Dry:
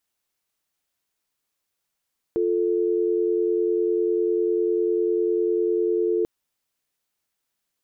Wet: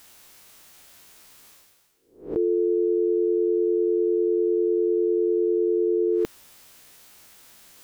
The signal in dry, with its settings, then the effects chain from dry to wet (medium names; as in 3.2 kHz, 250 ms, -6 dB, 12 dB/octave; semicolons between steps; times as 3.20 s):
call progress tone dial tone, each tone -22 dBFS 3.89 s
reverse spectral sustain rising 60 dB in 0.38 s; reverse; upward compressor, threshold -29 dBFS; reverse